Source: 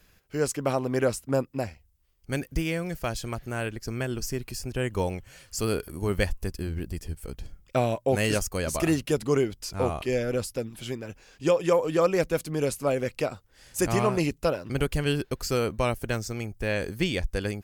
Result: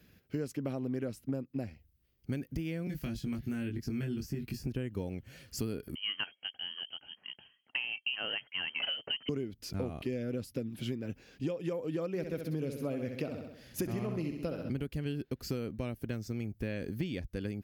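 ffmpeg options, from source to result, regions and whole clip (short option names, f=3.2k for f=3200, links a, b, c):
-filter_complex "[0:a]asettb=1/sr,asplit=3[a][b][c];[a]atrim=end=2.874[d];[b]atrim=start=2.87:end=4.67,asetpts=PTS-STARTPTS,afade=t=in:d=0.004:c=qsin,afade=t=out:st=1.796:d=0.004:c=qsin,equalizer=f=540:t=o:w=1.1:g=-7,acrossover=split=480|1500[e][f][g];[e]acompressor=threshold=-33dB:ratio=4[h];[f]acompressor=threshold=-51dB:ratio=4[i];[g]acompressor=threshold=-43dB:ratio=4[j];[h][i][j]amix=inputs=3:normalize=0,asplit=2[k][l];[l]adelay=21,volume=-3dB[m];[k][m]amix=inputs=2:normalize=0,atrim=end_sample=79380[n];[c]atrim=start=4.666[o];[d][n]acrossfade=d=0.004:c1=hsin:c2=qsin[p];[p][o]acrossfade=d=0.004:c1=qsin:c2=hsin,asettb=1/sr,asplit=3[q][r][s];[q]atrim=end=5.954[t];[r]atrim=start=5.95:end=9.29,asetpts=PTS-STARTPTS,afade=t=in:d=0.004:c=qsin,afade=t=out:st=3.336:d=0.004:c=qsin,highpass=260,lowpass=f=2.8k:t=q:w=0.5098,lowpass=f=2.8k:t=q:w=0.6013,lowpass=f=2.8k:t=q:w=0.9,lowpass=f=2.8k:t=q:w=2.563,afreqshift=-3300[u];[s]atrim=start=9.286[v];[t][u]acrossfade=d=0.004:c1=hsin:c2=qsin[w];[w][v]acrossfade=d=0.004:c1=qsin:c2=hsin,asettb=1/sr,asplit=3[x][y][z];[x]atrim=end=12.084[aa];[y]atrim=start=12.08:end=14.7,asetpts=PTS-STARTPTS,afade=t=in:d=0.004:c=qsin,afade=t=out:st=2.616:d=0.004:c=qsin,equalizer=f=8.1k:w=4.3:g=-7,aecho=1:1:65|130|195|260|325|390:0.398|0.199|0.0995|0.0498|0.0249|0.0124,atrim=end_sample=115542[ab];[z]atrim=start=14.696[ac];[aa][ab]acrossfade=d=0.004:c1=hsin:c2=qsin[ad];[ad][ac]acrossfade=d=0.004:c1=qsin:c2=hsin,equalizer=f=125:t=o:w=1:g=4,equalizer=f=250:t=o:w=1:g=8,equalizer=f=1k:t=o:w=1:g=-8,equalizer=f=8k:t=o:w=1:g=-10,acompressor=threshold=-30dB:ratio=12,highpass=56,volume=-1.5dB"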